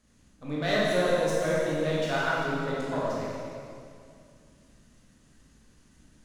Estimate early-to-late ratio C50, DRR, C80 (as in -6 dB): -3.0 dB, -7.0 dB, -1.0 dB